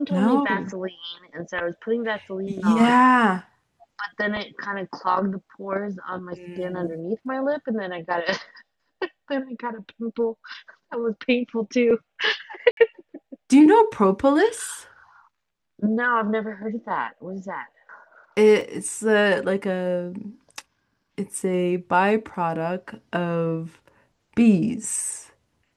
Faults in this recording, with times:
12.71–12.77 gap 62 ms
18.61 gap 2.4 ms

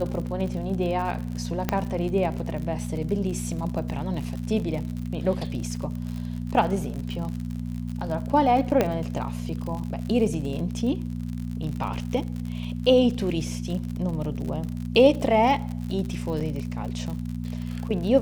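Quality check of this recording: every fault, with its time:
crackle 64/s -31 dBFS
hum 60 Hz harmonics 4 -31 dBFS
1.69 pop -9 dBFS
8.81 pop -8 dBFS
16.4–16.41 gap 7.3 ms

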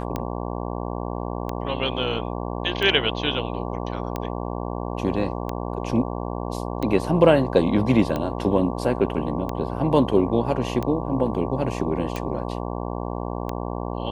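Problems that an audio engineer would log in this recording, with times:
buzz 60 Hz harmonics 19 -29 dBFS
tick 45 rpm -14 dBFS

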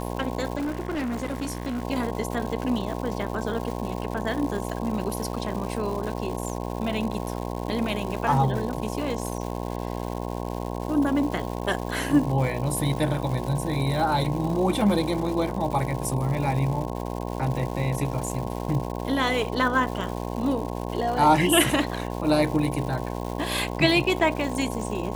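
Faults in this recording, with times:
buzz 60 Hz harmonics 18 -31 dBFS
crackle 310/s -32 dBFS
0.56–1.83 clipped -25 dBFS

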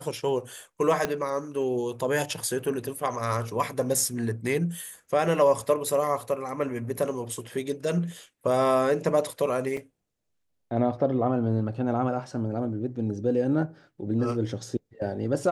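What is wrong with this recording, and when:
1.05 pop -12 dBFS
9.77 gap 2.7 ms

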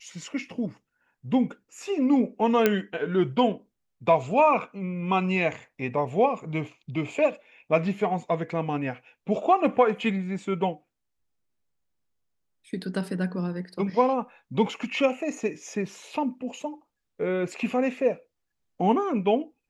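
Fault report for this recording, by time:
2.66 pop -7 dBFS

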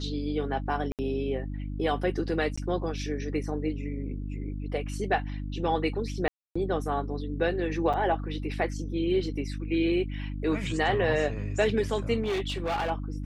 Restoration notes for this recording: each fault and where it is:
hum 50 Hz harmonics 6 -34 dBFS
0.92–0.99 gap 68 ms
2.56–2.58 gap 15 ms
6.28–6.55 gap 0.275 s
7.93–7.94 gap 6.6 ms
12.22–12.91 clipped -25.5 dBFS

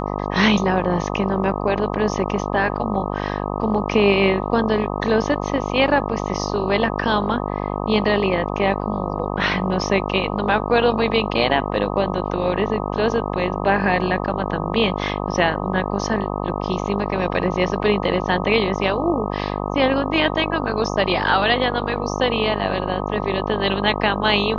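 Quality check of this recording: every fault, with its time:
buzz 50 Hz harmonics 25 -25 dBFS

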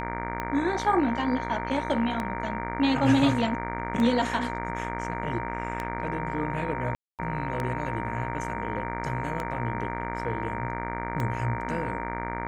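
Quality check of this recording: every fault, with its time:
buzz 60 Hz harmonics 39 -34 dBFS
tick 33 1/3 rpm -17 dBFS
tone 930 Hz -34 dBFS
6.95–7.19 gap 0.238 s

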